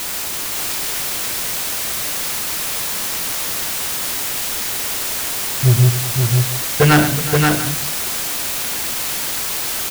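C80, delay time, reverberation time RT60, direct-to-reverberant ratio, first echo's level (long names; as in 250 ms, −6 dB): no reverb audible, 106 ms, no reverb audible, no reverb audible, −10.5 dB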